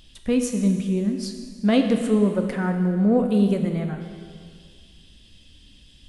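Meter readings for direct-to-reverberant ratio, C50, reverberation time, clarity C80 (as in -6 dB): 4.5 dB, 6.0 dB, 2.1 s, 7.5 dB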